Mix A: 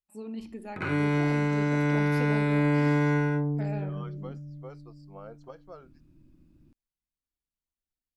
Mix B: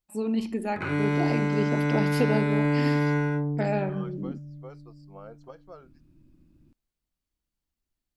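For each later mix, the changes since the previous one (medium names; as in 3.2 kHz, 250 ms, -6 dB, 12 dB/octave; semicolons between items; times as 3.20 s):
first voice +11.0 dB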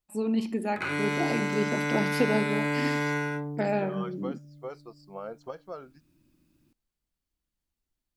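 second voice +6.5 dB; background: add tilt EQ +3 dB/octave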